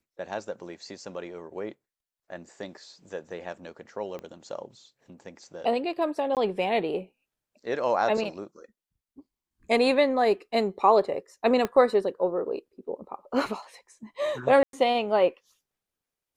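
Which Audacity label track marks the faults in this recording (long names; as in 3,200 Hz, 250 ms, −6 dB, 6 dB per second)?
4.190000	4.190000	click −26 dBFS
6.350000	6.370000	drop-out 18 ms
11.650000	11.650000	click −14 dBFS
14.630000	14.730000	drop-out 102 ms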